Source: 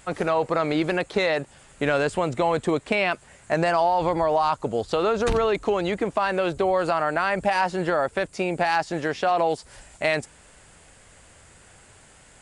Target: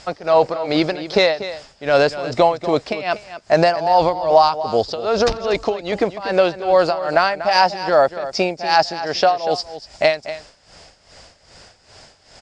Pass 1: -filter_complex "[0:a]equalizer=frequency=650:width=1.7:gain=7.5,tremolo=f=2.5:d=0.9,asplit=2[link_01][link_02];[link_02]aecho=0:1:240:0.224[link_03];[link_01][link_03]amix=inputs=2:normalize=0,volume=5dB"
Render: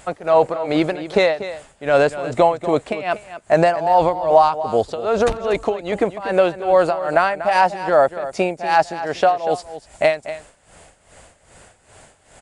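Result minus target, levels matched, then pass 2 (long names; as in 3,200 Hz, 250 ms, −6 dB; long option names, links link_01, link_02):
4,000 Hz band −8.0 dB
-filter_complex "[0:a]lowpass=frequency=5100:width_type=q:width=7.3,equalizer=frequency=650:width=1.7:gain=7.5,tremolo=f=2.5:d=0.9,asplit=2[link_01][link_02];[link_02]aecho=0:1:240:0.224[link_03];[link_01][link_03]amix=inputs=2:normalize=0,volume=5dB"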